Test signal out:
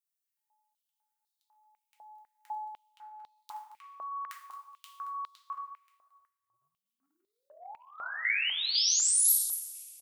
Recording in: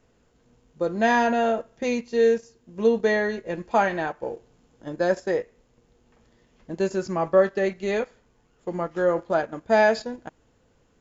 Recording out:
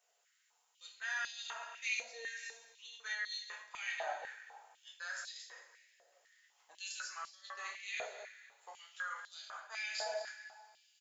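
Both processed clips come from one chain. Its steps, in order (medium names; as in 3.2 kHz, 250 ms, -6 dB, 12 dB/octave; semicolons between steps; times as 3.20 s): chunks repeated in reverse 147 ms, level -13 dB; on a send: delay 224 ms -15.5 dB; on the sum: two-slope reverb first 0.46 s, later 2.1 s, from -16 dB, DRR -1.5 dB; reverse; compression 6:1, threshold -20 dBFS; reverse; differentiator; step-sequenced high-pass 4 Hz 650–3900 Hz; trim -3 dB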